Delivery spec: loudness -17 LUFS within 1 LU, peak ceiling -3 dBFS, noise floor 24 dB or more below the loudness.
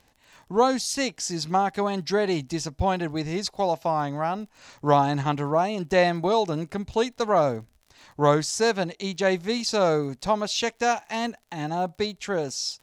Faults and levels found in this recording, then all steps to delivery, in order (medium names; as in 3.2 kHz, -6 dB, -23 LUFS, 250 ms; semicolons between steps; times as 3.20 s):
tick rate 42 per s; loudness -25.0 LUFS; peak level -7.0 dBFS; loudness target -17.0 LUFS
-> de-click; trim +8 dB; peak limiter -3 dBFS